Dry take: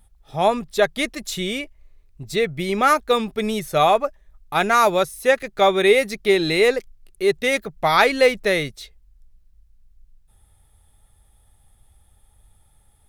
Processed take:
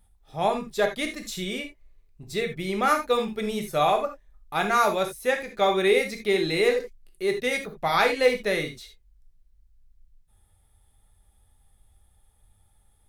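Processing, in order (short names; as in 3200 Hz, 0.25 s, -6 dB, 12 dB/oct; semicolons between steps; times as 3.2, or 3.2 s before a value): non-linear reverb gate 0.1 s flat, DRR 4 dB; gain -7 dB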